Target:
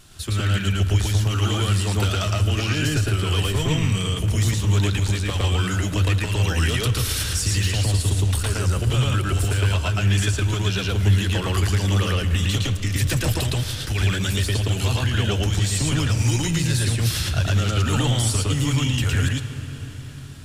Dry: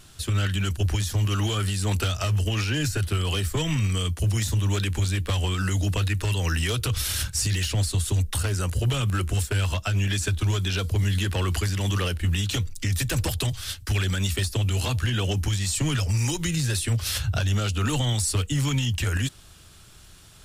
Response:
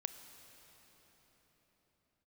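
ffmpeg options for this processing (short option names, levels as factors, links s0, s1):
-filter_complex "[0:a]asplit=2[s0][s1];[1:a]atrim=start_sample=2205,highshelf=f=10000:g=-10.5,adelay=112[s2];[s1][s2]afir=irnorm=-1:irlink=0,volume=1.5[s3];[s0][s3]amix=inputs=2:normalize=0"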